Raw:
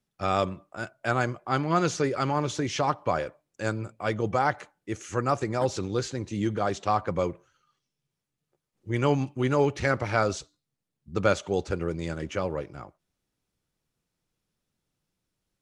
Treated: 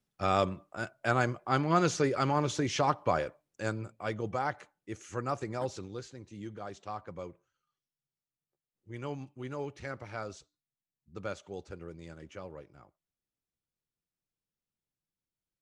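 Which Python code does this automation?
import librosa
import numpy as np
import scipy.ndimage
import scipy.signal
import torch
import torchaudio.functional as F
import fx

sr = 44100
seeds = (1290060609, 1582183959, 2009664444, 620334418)

y = fx.gain(x, sr, db=fx.line((3.15, -2.0), (4.34, -8.0), (5.6, -8.0), (6.09, -15.0)))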